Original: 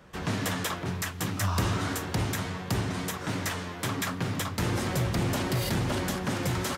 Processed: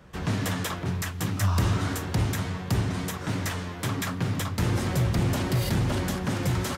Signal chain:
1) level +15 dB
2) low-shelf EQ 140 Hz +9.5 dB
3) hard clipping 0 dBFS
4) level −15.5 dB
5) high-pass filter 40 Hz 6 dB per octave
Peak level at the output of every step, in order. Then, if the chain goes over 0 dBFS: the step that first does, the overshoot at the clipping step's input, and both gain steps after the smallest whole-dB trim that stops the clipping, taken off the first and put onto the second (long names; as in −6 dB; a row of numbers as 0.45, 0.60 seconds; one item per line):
−0.5, +3.5, 0.0, −15.5, −14.0 dBFS
step 2, 3.5 dB
step 1 +11 dB, step 4 −11.5 dB